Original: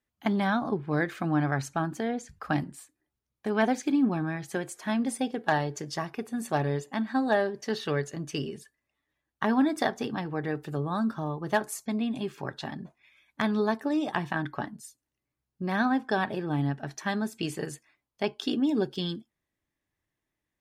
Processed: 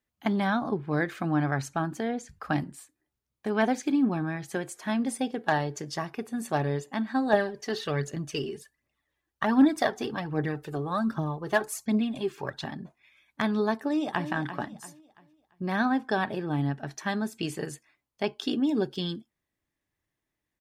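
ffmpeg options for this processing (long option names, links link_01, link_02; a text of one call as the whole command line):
ffmpeg -i in.wav -filter_complex "[0:a]asettb=1/sr,asplit=3[link_01][link_02][link_03];[link_01]atrim=end=7.334[link_04];[link_02]atrim=start=7.33:end=12.65,asetpts=PTS-STARTPTS,afade=type=in:duration=0.004:curve=qsin,afade=type=out:start_time=5.316:duration=0.004:curve=qsin,aphaser=in_gain=1:out_gain=1:delay=3:decay=0.5:speed=1.3:type=triangular[link_05];[link_03]atrim=start=12.646[link_06];[link_04][link_05]acrossfade=duration=0.004:curve1=hsin:curve2=qsin[link_07];[link_07][link_06]acrossfade=duration=0.004:curve1=qsin:curve2=hsin,asplit=2[link_08][link_09];[link_09]afade=type=in:start_time=13.75:duration=0.01,afade=type=out:start_time=14.31:duration=0.01,aecho=0:1:340|680|1020|1360:0.298538|0.104488|0.0365709|0.0127998[link_10];[link_08][link_10]amix=inputs=2:normalize=0" out.wav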